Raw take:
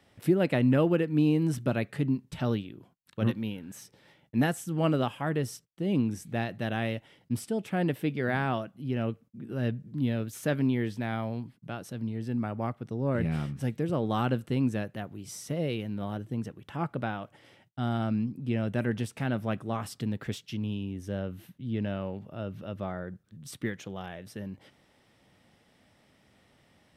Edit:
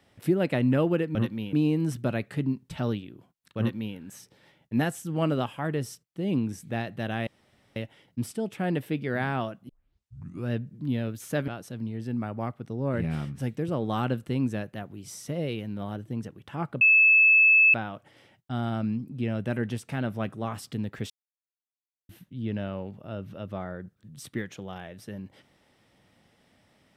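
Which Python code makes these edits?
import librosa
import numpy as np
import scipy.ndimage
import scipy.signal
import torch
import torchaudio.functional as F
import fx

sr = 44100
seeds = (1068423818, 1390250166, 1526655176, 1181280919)

y = fx.edit(x, sr, fx.duplicate(start_s=3.2, length_s=0.38, to_s=1.15),
    fx.insert_room_tone(at_s=6.89, length_s=0.49),
    fx.tape_start(start_s=8.82, length_s=0.82),
    fx.cut(start_s=10.61, length_s=1.08),
    fx.insert_tone(at_s=17.02, length_s=0.93, hz=2610.0, db=-14.5),
    fx.silence(start_s=20.38, length_s=0.99), tone=tone)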